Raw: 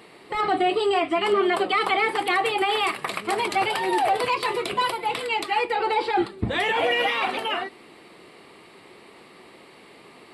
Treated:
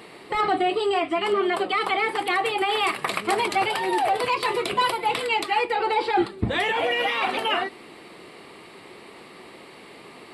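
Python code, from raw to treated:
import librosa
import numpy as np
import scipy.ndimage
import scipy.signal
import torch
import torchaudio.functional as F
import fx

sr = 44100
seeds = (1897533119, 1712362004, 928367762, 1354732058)

y = fx.rider(x, sr, range_db=5, speed_s=0.5)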